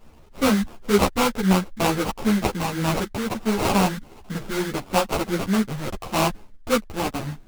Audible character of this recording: aliases and images of a low sample rate 1.8 kHz, jitter 20%; a shimmering, thickened sound

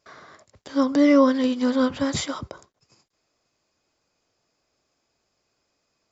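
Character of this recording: noise floor -75 dBFS; spectral tilt -4.5 dB/octave

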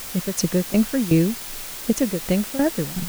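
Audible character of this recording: tremolo saw down 2.7 Hz, depth 85%; a quantiser's noise floor 6-bit, dither triangular

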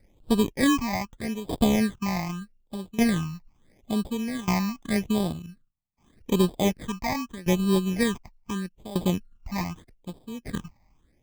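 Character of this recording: aliases and images of a low sample rate 1.4 kHz, jitter 0%; tremolo saw down 0.67 Hz, depth 90%; phasing stages 8, 0.81 Hz, lowest notch 430–2000 Hz

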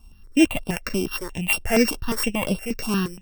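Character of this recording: a buzz of ramps at a fixed pitch in blocks of 16 samples; notches that jump at a steady rate 8.5 Hz 510–6600 Hz

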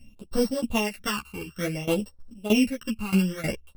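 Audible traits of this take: a buzz of ramps at a fixed pitch in blocks of 16 samples; phasing stages 12, 0.57 Hz, lowest notch 590–2500 Hz; tremolo saw down 3.2 Hz, depth 90%; a shimmering, thickened sound

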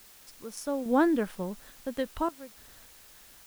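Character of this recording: random-step tremolo, depth 100%; a quantiser's noise floor 10-bit, dither triangular

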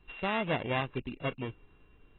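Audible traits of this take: a buzz of ramps at a fixed pitch in blocks of 16 samples; AAC

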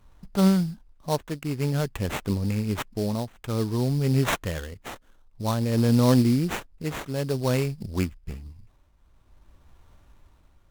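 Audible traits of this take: aliases and images of a low sample rate 4.9 kHz, jitter 20%; tremolo triangle 0.53 Hz, depth 70%; Vorbis

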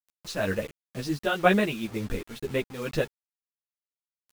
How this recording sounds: tremolo triangle 2.1 Hz, depth 70%; a quantiser's noise floor 8-bit, dither none; a shimmering, thickened sound

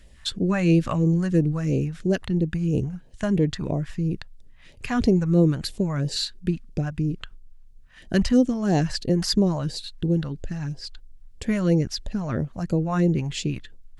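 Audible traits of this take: phasing stages 2, 3 Hz, lowest notch 360–1400 Hz

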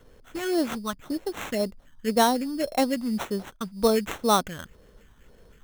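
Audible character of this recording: phasing stages 4, 1.9 Hz, lowest notch 480–4300 Hz; aliases and images of a low sample rate 4.8 kHz, jitter 0%

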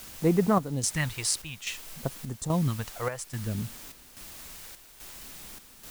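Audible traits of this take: phasing stages 2, 0.57 Hz, lowest notch 210–3800 Hz; a quantiser's noise floor 8-bit, dither triangular; chopped level 1.2 Hz, depth 60%, duty 70%

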